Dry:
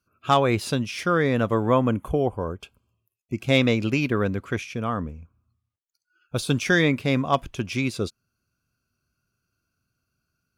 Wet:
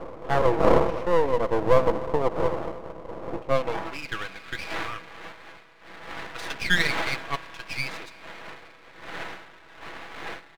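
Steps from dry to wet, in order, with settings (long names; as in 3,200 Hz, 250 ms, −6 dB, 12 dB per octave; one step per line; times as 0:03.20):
wind on the microphone 560 Hz −26 dBFS
comb filter 6.1 ms, depth 53%
spring reverb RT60 3.9 s, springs 31 ms, chirp 40 ms, DRR 14 dB
band-pass filter sweep 520 Hz → 2,000 Hz, 0:03.44–0:04.22
half-wave rectification
level +6.5 dB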